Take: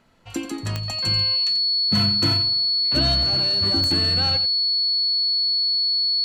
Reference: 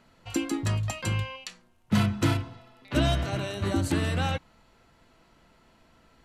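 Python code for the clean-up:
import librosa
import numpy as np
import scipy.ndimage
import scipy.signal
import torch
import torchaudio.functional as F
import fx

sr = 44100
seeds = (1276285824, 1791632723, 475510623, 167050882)

y = fx.fix_declick_ar(x, sr, threshold=10.0)
y = fx.notch(y, sr, hz=4400.0, q=30.0)
y = fx.fix_echo_inverse(y, sr, delay_ms=88, level_db=-12.0)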